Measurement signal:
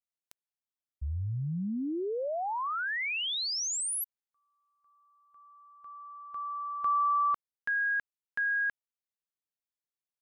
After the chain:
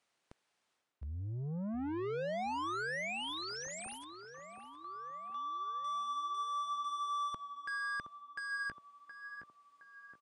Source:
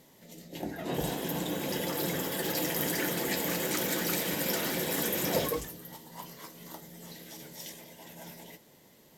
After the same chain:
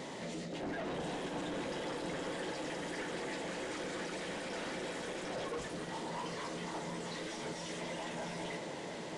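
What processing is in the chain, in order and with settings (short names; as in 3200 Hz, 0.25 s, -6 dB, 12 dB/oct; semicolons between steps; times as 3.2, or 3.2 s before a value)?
low shelf 430 Hz +6.5 dB; reverse; compressor 6:1, threshold -43 dBFS; reverse; overdrive pedal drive 36 dB, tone 2200 Hz, clips at -24 dBFS; tape echo 0.718 s, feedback 64%, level -6 dB, low-pass 1600 Hz; downsampling 22050 Hz; gain -7 dB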